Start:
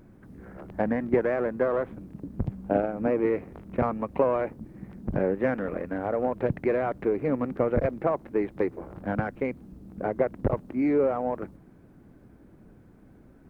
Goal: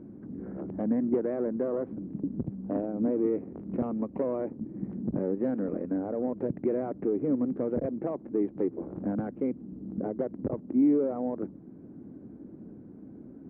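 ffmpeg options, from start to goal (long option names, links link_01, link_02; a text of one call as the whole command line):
ffmpeg -i in.wav -af "aeval=exprs='0.335*sin(PI/2*1.78*val(0)/0.335)':channel_layout=same,alimiter=limit=-18dB:level=0:latency=1:release=460,bandpass=frequency=270:width_type=q:width=1.5:csg=0,volume=1.5dB" out.wav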